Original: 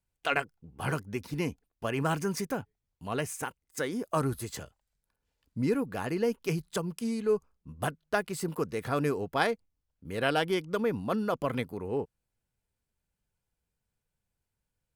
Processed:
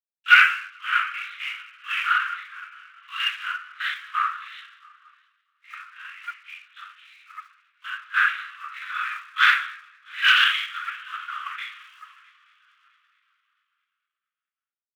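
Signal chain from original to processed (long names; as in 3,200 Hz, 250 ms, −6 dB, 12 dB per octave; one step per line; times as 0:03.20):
on a send: echo machine with several playback heads 220 ms, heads first and third, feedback 65%, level −17.5 dB
on the sum: rectangular room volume 43 cubic metres, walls mixed, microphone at 2.2 metres
linear-prediction vocoder at 8 kHz whisper
in parallel at −9 dB: hard clipping −10 dBFS, distortion −14 dB
on the sum: harmonic and percussive parts rebalanced percussive −13 dB
automatic gain control gain up to 6.5 dB
leveller curve on the samples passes 1
Butterworth high-pass 1,200 Hz 72 dB per octave
multiband upward and downward expander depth 100%
level −4 dB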